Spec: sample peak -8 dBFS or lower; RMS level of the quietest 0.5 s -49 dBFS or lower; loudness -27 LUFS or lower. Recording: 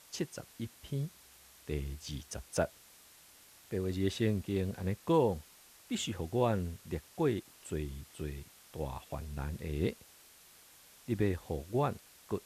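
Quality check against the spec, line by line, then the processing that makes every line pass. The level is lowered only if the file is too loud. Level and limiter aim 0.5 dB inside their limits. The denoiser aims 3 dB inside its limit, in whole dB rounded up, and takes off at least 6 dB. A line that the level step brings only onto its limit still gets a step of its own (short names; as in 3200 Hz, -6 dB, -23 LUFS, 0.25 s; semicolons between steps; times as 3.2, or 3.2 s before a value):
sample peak -16.0 dBFS: OK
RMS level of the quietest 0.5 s -59 dBFS: OK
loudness -36.0 LUFS: OK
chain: none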